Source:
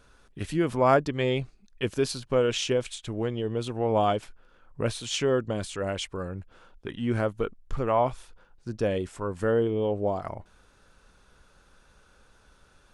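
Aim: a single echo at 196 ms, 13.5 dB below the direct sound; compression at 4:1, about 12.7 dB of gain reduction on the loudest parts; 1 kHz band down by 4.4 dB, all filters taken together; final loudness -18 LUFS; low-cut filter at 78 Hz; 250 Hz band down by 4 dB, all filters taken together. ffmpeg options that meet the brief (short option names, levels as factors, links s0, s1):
-af "highpass=78,equalizer=f=250:t=o:g=-5,equalizer=f=1000:t=o:g=-6,acompressor=threshold=0.0158:ratio=4,aecho=1:1:196:0.211,volume=11.9"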